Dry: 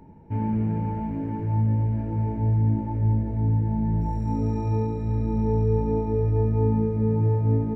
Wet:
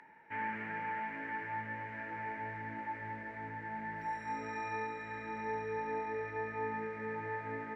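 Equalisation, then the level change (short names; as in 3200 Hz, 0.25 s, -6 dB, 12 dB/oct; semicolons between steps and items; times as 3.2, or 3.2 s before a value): band-pass 1800 Hz, Q 4.8; tilt +2.5 dB/oct; +15.5 dB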